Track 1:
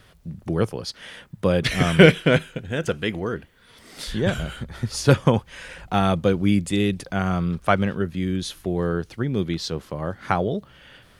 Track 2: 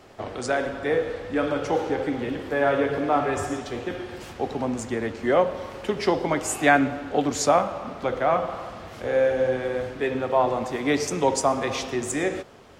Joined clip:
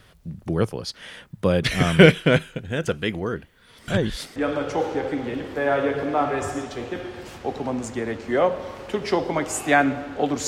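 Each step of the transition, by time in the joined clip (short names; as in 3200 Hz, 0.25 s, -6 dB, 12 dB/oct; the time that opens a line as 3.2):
track 1
3.88–4.36 reverse
4.36 switch to track 2 from 1.31 s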